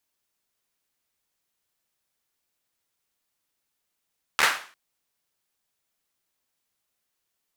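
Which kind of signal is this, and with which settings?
synth clap length 0.35 s, bursts 4, apart 13 ms, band 1,500 Hz, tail 0.42 s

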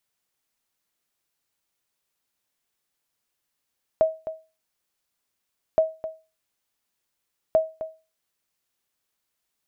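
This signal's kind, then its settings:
ping with an echo 639 Hz, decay 0.30 s, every 1.77 s, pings 3, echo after 0.26 s, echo −13 dB −11 dBFS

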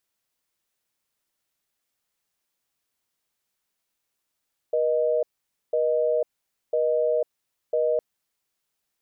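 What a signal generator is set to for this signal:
call progress tone busy tone, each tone −22.5 dBFS 3.26 s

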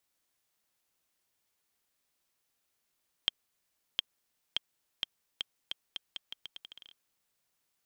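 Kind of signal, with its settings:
bouncing ball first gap 0.71 s, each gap 0.81, 3,210 Hz, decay 16 ms −11.5 dBFS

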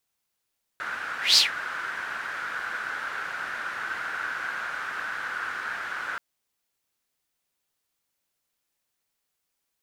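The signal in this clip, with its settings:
pass-by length 5.38 s, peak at 0:00.57, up 0.18 s, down 0.15 s, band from 1,500 Hz, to 4,800 Hz, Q 6.3, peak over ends 16.5 dB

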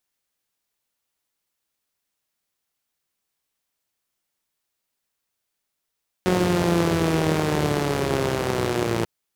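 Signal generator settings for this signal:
pulse-train model of a four-cylinder engine, changing speed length 2.79 s, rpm 5,500, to 3,400, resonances 100/170/340 Hz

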